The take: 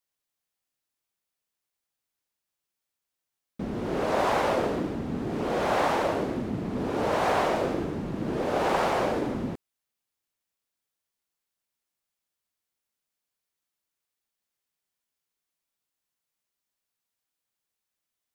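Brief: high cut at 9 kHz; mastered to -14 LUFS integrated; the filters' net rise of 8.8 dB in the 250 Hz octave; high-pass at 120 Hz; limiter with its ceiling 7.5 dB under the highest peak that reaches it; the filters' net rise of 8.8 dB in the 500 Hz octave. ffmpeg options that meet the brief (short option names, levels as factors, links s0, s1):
-af "highpass=120,lowpass=9000,equalizer=f=250:t=o:g=8.5,equalizer=f=500:t=o:g=8.5,volume=2.82,alimiter=limit=0.596:level=0:latency=1"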